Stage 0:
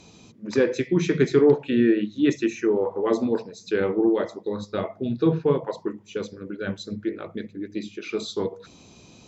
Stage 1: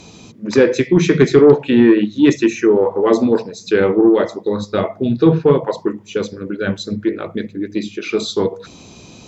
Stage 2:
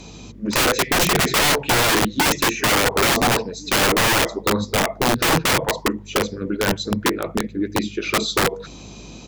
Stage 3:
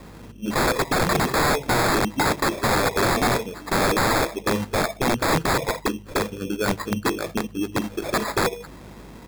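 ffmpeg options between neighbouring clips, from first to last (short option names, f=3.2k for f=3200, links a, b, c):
-af "acontrast=89,volume=2.5dB"
-filter_complex "[0:a]aeval=exprs='val(0)+0.00708*(sin(2*PI*50*n/s)+sin(2*PI*2*50*n/s)/2+sin(2*PI*3*50*n/s)/3+sin(2*PI*4*50*n/s)/4+sin(2*PI*5*50*n/s)/5)':c=same,asplit=2[a][b];[b]adelay=1399,volume=-30dB,highshelf=f=4k:g=-31.5[c];[a][c]amix=inputs=2:normalize=0,aeval=exprs='(mod(3.98*val(0)+1,2)-1)/3.98':c=same"
-af "acrusher=samples=15:mix=1:aa=0.000001,volume=-3dB"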